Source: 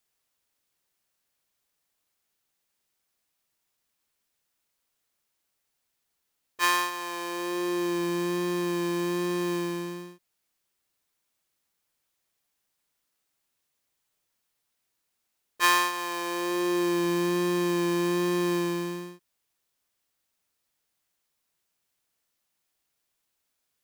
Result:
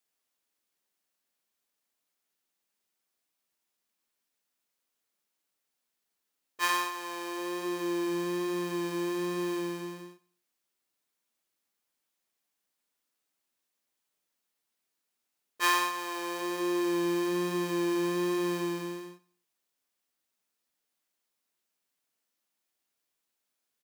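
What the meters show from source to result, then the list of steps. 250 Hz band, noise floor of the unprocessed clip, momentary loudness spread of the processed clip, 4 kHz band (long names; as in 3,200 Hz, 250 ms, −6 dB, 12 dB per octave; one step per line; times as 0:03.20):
−3.5 dB, −79 dBFS, 8 LU, −4.0 dB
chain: low shelf with overshoot 160 Hz −7 dB, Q 1.5
flanger 0.91 Hz, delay 6.6 ms, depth 3.2 ms, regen −64%
repeating echo 90 ms, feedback 38%, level −20.5 dB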